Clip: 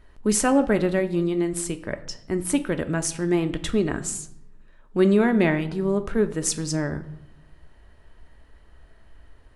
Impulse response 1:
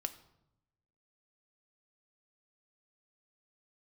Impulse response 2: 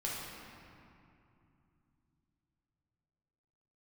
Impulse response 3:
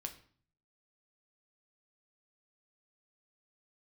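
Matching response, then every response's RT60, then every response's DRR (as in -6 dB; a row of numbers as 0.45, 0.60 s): 1; 0.85, 2.7, 0.50 s; 8.0, -5.5, 4.5 dB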